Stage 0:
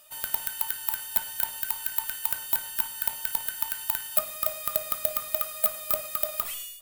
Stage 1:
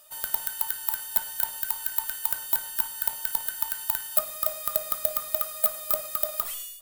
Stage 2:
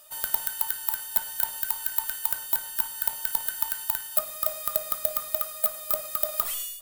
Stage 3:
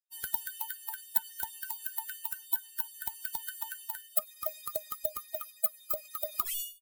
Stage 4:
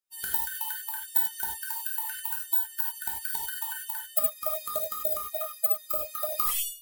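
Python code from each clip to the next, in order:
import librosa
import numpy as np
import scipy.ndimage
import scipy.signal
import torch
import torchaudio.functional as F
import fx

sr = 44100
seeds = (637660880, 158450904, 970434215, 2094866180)

y1 = fx.graphic_eq_15(x, sr, hz=(100, 250, 2500), db=(-7, -4, -6))
y1 = y1 * librosa.db_to_amplitude(1.0)
y2 = fx.rider(y1, sr, range_db=10, speed_s=0.5)
y3 = fx.bin_expand(y2, sr, power=3.0)
y4 = fx.rev_gated(y3, sr, seeds[0], gate_ms=120, shape='flat', drr_db=-2.5)
y4 = y4 * librosa.db_to_amplitude(1.5)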